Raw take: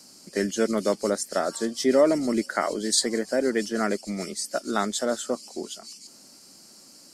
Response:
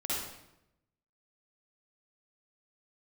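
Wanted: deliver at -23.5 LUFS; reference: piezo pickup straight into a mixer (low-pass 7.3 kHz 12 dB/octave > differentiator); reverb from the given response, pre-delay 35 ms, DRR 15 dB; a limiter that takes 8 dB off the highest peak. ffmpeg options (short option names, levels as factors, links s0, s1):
-filter_complex "[0:a]alimiter=limit=0.158:level=0:latency=1,asplit=2[s0][s1];[1:a]atrim=start_sample=2205,adelay=35[s2];[s1][s2]afir=irnorm=-1:irlink=0,volume=0.0944[s3];[s0][s3]amix=inputs=2:normalize=0,lowpass=7300,aderivative,volume=5.96"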